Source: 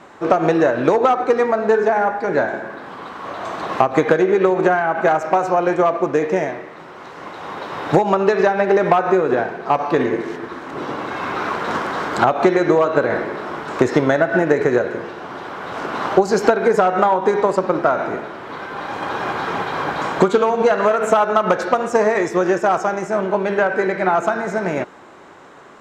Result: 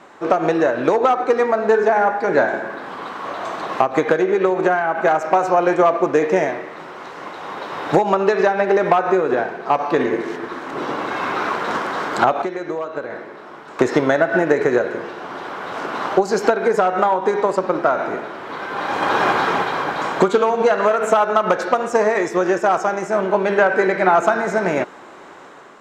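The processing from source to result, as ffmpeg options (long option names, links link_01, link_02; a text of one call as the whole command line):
ffmpeg -i in.wav -filter_complex "[0:a]asplit=3[link_01][link_02][link_03];[link_01]atrim=end=12.422[link_04];[link_02]atrim=start=12.418:end=13.792,asetpts=PTS-STARTPTS,volume=-10dB[link_05];[link_03]atrim=start=13.788[link_06];[link_04][link_05]acrossfade=duration=0.004:curve1=hsin:curve2=hsin[link_07];[link_07][link_06]acrossfade=duration=0.004:curve1=hsin:curve2=hsin,equalizer=frequency=65:width=0.53:gain=-9,dynaudnorm=framelen=620:gausssize=3:maxgain=11.5dB,volume=-1dB" out.wav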